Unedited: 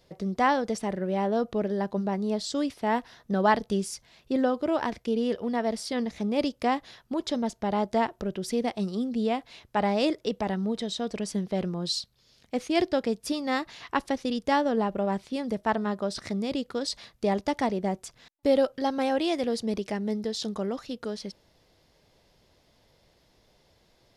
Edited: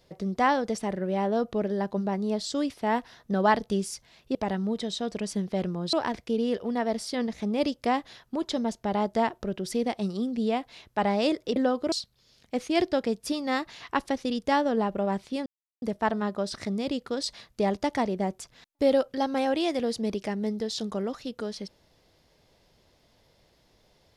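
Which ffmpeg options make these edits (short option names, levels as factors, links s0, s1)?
-filter_complex "[0:a]asplit=6[s0][s1][s2][s3][s4][s5];[s0]atrim=end=4.352[s6];[s1]atrim=start=10.338:end=11.922[s7];[s2]atrim=start=4.708:end=10.342[s8];[s3]atrim=start=4.348:end=4.712[s9];[s4]atrim=start=11.918:end=15.46,asetpts=PTS-STARTPTS,afade=t=out:st=3.538:d=0.004:c=hsin,apad=pad_dur=0.36[s10];[s5]atrim=start=15.46,asetpts=PTS-STARTPTS,afade=t=in:d=0.004:c=hsin[s11];[s6][s7]acrossfade=d=0.004:c1=hsin:c2=hsin[s12];[s12][s8]acrossfade=d=0.004:c1=hsin:c2=hsin[s13];[s13][s9]acrossfade=d=0.004:c1=hsin:c2=hsin[s14];[s10][s11]concat=n=2:v=0:a=1[s15];[s14][s15]acrossfade=d=0.004:c1=hsin:c2=hsin"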